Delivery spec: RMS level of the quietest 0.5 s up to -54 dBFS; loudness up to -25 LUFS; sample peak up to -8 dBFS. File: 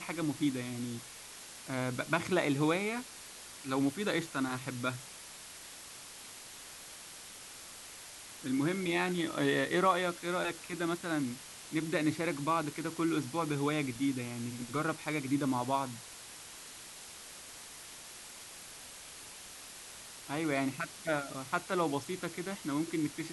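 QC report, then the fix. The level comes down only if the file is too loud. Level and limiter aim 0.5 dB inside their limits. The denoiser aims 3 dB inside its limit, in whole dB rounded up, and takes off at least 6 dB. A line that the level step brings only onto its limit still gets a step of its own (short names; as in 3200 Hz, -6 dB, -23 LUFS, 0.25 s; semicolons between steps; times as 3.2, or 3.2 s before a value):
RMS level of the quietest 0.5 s -49 dBFS: fail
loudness -34.0 LUFS: OK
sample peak -13.5 dBFS: OK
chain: denoiser 8 dB, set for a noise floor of -49 dBFS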